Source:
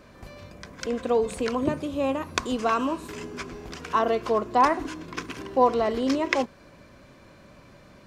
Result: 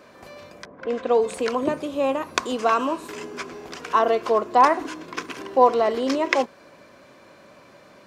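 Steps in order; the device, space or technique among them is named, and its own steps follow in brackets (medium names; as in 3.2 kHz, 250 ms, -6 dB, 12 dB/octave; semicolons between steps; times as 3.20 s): 0.65–1.34 s: level-controlled noise filter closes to 720 Hz, open at -21 dBFS; filter by subtraction (in parallel: low-pass 550 Hz 12 dB/octave + polarity flip); on the sum: trim +2.5 dB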